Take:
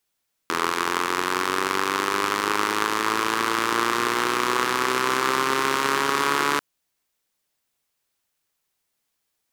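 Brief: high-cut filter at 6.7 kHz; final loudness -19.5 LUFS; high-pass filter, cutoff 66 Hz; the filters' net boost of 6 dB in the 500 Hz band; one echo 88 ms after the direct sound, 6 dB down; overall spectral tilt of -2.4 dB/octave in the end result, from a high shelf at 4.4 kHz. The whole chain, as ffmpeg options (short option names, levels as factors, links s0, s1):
-af "highpass=66,lowpass=6700,equalizer=f=500:t=o:g=8,highshelf=f=4400:g=4.5,aecho=1:1:88:0.501,volume=1.06"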